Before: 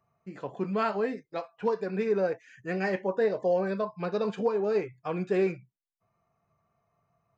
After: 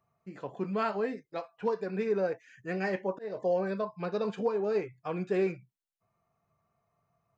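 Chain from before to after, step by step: 2.71–3.37 auto swell 0.236 s; gain -2.5 dB

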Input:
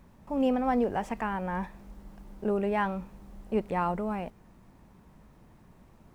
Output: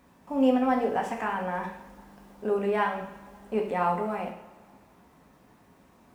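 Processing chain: HPF 330 Hz 6 dB/oct; two-slope reverb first 0.6 s, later 2.2 s, from -18 dB, DRR 0.5 dB; gain +1 dB

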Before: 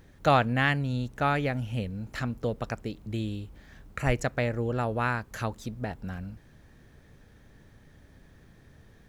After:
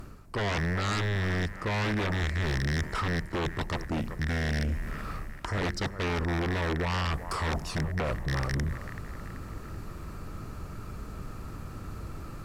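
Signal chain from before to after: rattling part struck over -33 dBFS, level -24 dBFS; bell 4400 Hz -7 dB 0.7 oct; reverse; compressor 5:1, threshold -37 dBFS, peak gain reduction 18 dB; reverse; de-hum 88.28 Hz, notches 3; varispeed -27%; on a send: thinning echo 0.382 s, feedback 48%, high-pass 420 Hz, level -15.5 dB; on the sum: sine folder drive 12 dB, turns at -25.5 dBFS

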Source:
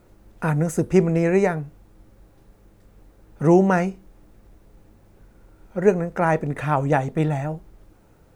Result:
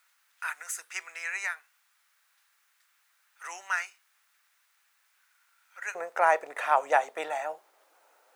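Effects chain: HPF 1400 Hz 24 dB/oct, from 5.95 s 620 Hz

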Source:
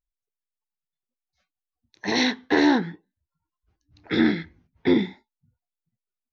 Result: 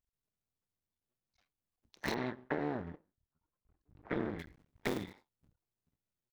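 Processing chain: cycle switcher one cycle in 2, muted; 2.14–4.39 LPF 1500 Hz 12 dB/oct; compressor 10:1, threshold -31 dBFS, peak gain reduction 16 dB; gain -1 dB

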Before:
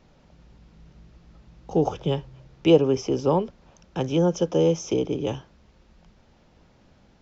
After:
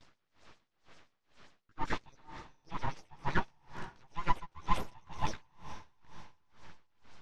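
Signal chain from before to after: gate with hold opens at -50 dBFS; bell 340 Hz -5 dB 1.6 oct; reverse; compressor 6:1, threshold -32 dBFS, peak gain reduction 16.5 dB; reverse; LFO high-pass sine 7.6 Hz 430–2800 Hz; chorus voices 2, 0.42 Hz, delay 14 ms, depth 5 ms; full-wave rectifier; air absorption 110 m; on a send: diffused feedback echo 0.485 s, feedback 48%, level -13 dB; on the sum: dB-linear tremolo 2.1 Hz, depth 29 dB; gain +13 dB

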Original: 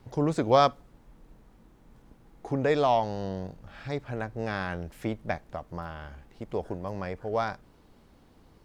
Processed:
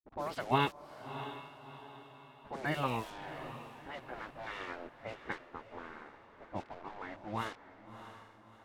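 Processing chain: nonlinear frequency compression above 1800 Hz 1.5:1; HPF 47 Hz 24 dB/oct; sample gate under -41.5 dBFS; low-pass opened by the level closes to 700 Hz, open at -22 dBFS; spectral gate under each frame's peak -10 dB weak; vibrato 4.2 Hz 11 cents; on a send: diffused feedback echo 0.652 s, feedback 44%, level -11.5 dB; on the sum: gain -1.5 dB

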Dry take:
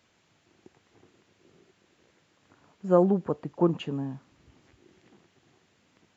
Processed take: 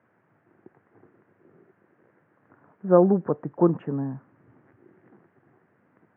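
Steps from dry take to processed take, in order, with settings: elliptic band-pass 110–1700 Hz, stop band 40 dB; gain +4 dB

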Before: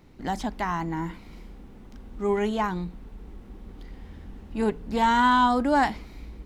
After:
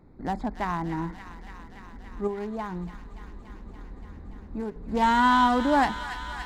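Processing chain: Wiener smoothing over 15 samples; 2.27–4.76 compressor 10:1, threshold -29 dBFS, peak gain reduction 10 dB; thin delay 0.287 s, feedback 81%, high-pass 1600 Hz, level -7.5 dB

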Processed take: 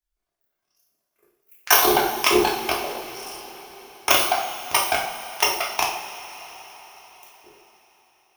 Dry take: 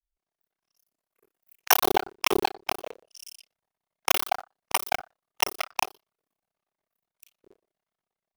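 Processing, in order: two-slope reverb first 0.52 s, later 4.8 s, from -17 dB, DRR -3.5 dB; gain +1.5 dB

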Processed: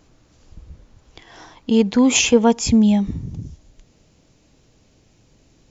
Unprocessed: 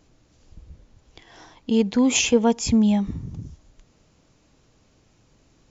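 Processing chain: bell 1200 Hz +2 dB 0.99 oct, from 2.68 s -5.5 dB; gain +4 dB

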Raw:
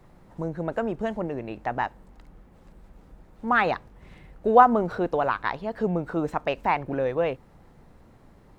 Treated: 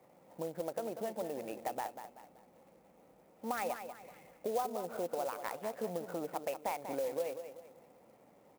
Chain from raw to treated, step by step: speaker cabinet 250–3200 Hz, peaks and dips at 380 Hz -3 dB, 530 Hz +8 dB, 760 Hz +4 dB, 1100 Hz -3 dB, 1600 Hz -7 dB, 2300 Hz +4 dB; compressor 4:1, threshold -29 dBFS, peak gain reduction 18.5 dB; feedback echo 0.191 s, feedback 38%, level -9.5 dB; clock jitter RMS 0.042 ms; gain -6.5 dB

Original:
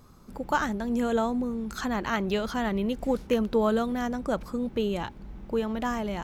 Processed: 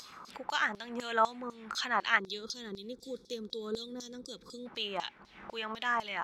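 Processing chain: spectral gain 2.19–4.66, 530–3300 Hz -22 dB; LFO band-pass saw down 4 Hz 980–5400 Hz; upward compressor, threshold -48 dBFS; gain +8.5 dB

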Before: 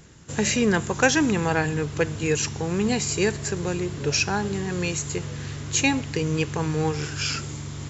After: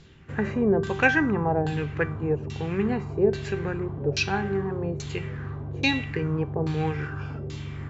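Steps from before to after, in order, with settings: low shelf 210 Hz +7.5 dB; notches 60/120/180 Hz; resonator 390 Hz, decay 0.53 s, mix 80%; LFO low-pass saw down 1.2 Hz 500–4300 Hz; gain +7.5 dB

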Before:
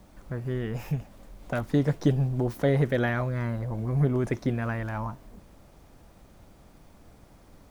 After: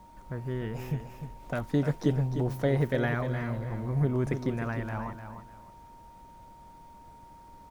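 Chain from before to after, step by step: whine 930 Hz -49 dBFS; feedback echo 0.302 s, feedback 24%, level -9 dB; gain -3 dB

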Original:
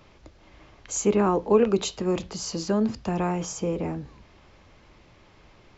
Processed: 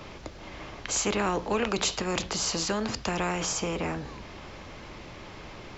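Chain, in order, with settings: spectral compressor 2:1; gain -4.5 dB

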